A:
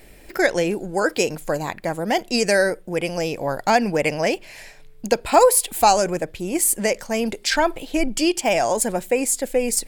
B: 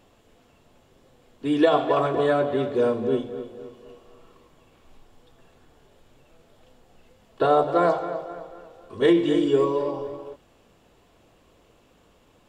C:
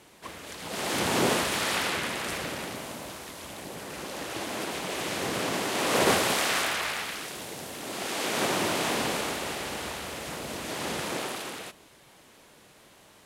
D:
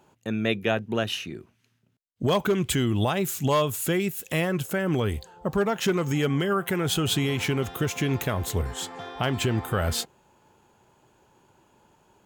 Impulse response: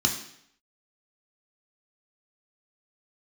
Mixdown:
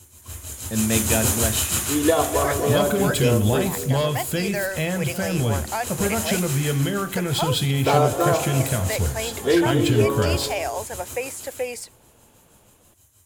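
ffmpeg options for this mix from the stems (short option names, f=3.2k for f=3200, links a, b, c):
-filter_complex "[0:a]acrossover=split=3800[a][b];[b]acompressor=threshold=-31dB:ratio=4:attack=1:release=60[c];[a][c]amix=inputs=2:normalize=0,highpass=570,dynaudnorm=f=110:g=3:m=13dB,adelay=2050,volume=-14dB[d];[1:a]adelay=450,volume=-0.5dB[e];[2:a]tremolo=f=6.3:d=0.81,aexciter=amount=5.9:drive=8.5:freq=6.9k,lowshelf=f=120:t=q:w=3:g=11.5,volume=-5dB,afade=t=out:st=3.65:d=0.31:silence=0.354813,asplit=2[f][g];[g]volume=-5dB[h];[3:a]adelay=450,volume=0.5dB,asplit=2[i][j];[j]volume=-17.5dB[k];[4:a]atrim=start_sample=2205[l];[h][k]amix=inputs=2:normalize=0[m];[m][l]afir=irnorm=-1:irlink=0[n];[d][e][f][i][n]amix=inputs=5:normalize=0"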